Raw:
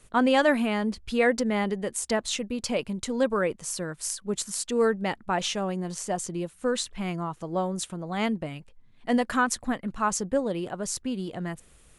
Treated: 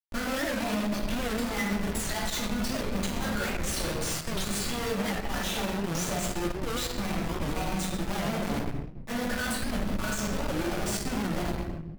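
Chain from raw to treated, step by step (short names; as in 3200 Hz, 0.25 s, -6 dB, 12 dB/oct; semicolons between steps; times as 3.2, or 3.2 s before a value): random spectral dropouts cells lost 38%; analogue delay 0.234 s, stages 1024, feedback 65%, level -24 dB; dynamic EQ 120 Hz, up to -3 dB, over -45 dBFS, Q 1; flange 0.25 Hz, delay 1.6 ms, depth 3.8 ms, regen +83%; Schmitt trigger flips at -45 dBFS; shoebox room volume 430 m³, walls mixed, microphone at 2.5 m; limiter -19.5 dBFS, peak gain reduction 6 dB; added harmonics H 3 -22 dB, 6 -21 dB, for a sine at -19.5 dBFS; record warp 78 rpm, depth 160 cents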